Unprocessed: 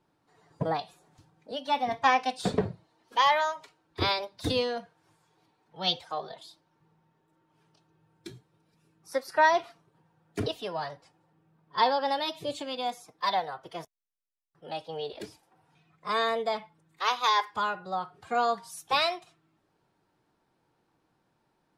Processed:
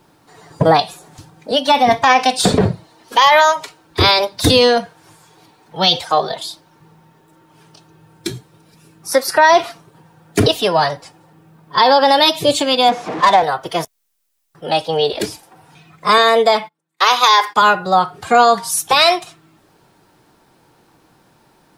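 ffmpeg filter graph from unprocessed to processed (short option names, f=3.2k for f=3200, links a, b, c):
-filter_complex "[0:a]asettb=1/sr,asplit=3[a][b][c];[a]atrim=end=12.894[d];[b]atrim=start=12.89:end=13.43,asetpts=PTS-STARTPTS,afade=t=in:d=0.004:c=qsin,afade=t=out:st=0.536:d=0.004:c=qsin,aeval=exprs='val(0)+0.5*0.0178*sgn(val(0))':c=same,highpass=170,adynamicsmooth=sensitivity=1:basefreq=1.6k[e];[c]atrim=start=13.426[f];[d][e]acrossfade=d=0.004:c1=hsin:c2=qsin[g];[g][f]acrossfade=d=0.004:c1=qsin:c2=hsin,asettb=1/sr,asplit=3[h][i][j];[h]atrim=end=16.184[k];[i]atrim=start=16.18:end=17.62,asetpts=PTS-STARTPTS,afade=t=in:d=0.004:c=qsin,afade=t=out:st=1.436:d=0.004:c=qsin,agate=range=-27dB:threshold=-55dB:ratio=16:release=100:detection=peak,highpass=220[l];[j]atrim=start=17.616[m];[k][l]acrossfade=d=0.004:c1=hsin:c2=qsin[n];[n][m]acrossfade=d=0.004:c1=qsin:c2=hsin,highshelf=f=5.5k:g=7.5,alimiter=level_in=20.5dB:limit=-1dB:release=50:level=0:latency=1,volume=-1.5dB"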